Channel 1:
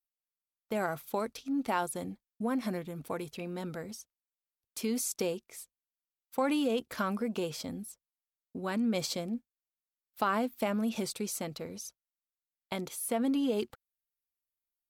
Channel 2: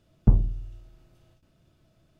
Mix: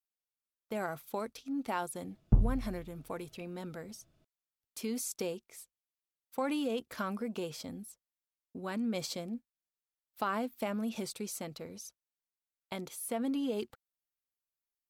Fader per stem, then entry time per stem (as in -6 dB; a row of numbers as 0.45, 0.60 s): -4.0, -6.5 dB; 0.00, 2.05 s